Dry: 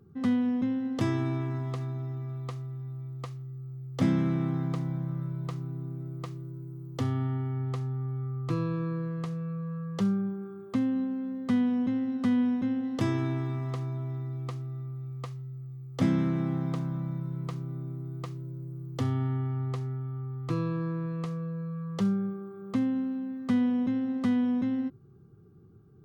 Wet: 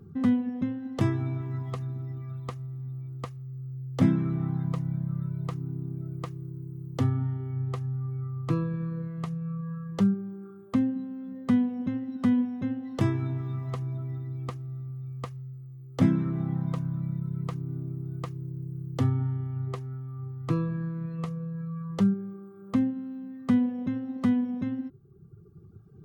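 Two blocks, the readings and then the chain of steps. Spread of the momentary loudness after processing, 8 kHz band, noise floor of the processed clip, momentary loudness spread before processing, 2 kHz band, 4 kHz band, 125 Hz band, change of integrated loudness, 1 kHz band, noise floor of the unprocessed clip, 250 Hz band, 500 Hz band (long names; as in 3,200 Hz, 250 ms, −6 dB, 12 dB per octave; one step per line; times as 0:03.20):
12 LU, can't be measured, −48 dBFS, 12 LU, −1.5 dB, −2.0 dB, +1.5 dB, +1.0 dB, −0.5 dB, −47 dBFS, +0.5 dB, −1.0 dB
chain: reverb reduction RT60 1.5 s
dynamic equaliser 4,800 Hz, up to −5 dB, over −60 dBFS, Q 0.95
mains-hum notches 60/120 Hz
in parallel at −2 dB: downward compressor, threshold −40 dBFS, peak gain reduction 17.5 dB
on the sum: bass and treble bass +5 dB, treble −1 dB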